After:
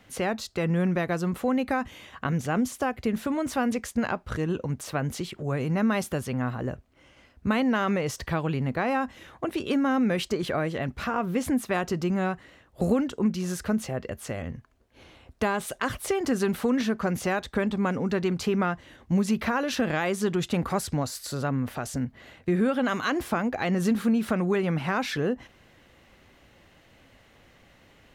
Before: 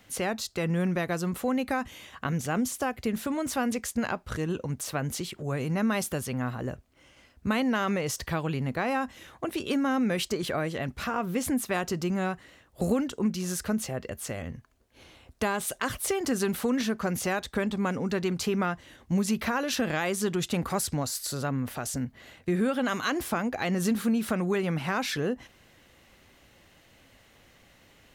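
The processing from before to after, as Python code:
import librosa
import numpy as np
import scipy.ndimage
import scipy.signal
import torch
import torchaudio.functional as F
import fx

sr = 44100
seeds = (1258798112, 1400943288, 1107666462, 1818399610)

y = fx.high_shelf(x, sr, hz=4400.0, db=-9.0)
y = y * librosa.db_to_amplitude(2.5)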